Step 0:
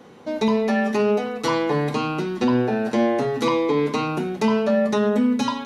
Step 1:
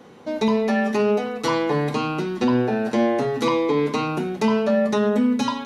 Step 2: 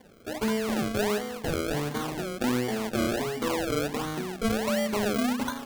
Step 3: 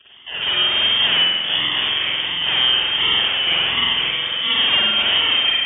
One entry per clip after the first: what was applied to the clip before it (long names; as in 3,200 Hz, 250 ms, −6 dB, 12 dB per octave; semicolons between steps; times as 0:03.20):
no processing that can be heard
sample-and-hold swept by an LFO 33×, swing 100% 1.4 Hz; level −7.5 dB
voice inversion scrambler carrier 3,400 Hz; high-pass filter 61 Hz; spring reverb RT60 1.1 s, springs 47 ms, chirp 60 ms, DRR −8.5 dB; level +2 dB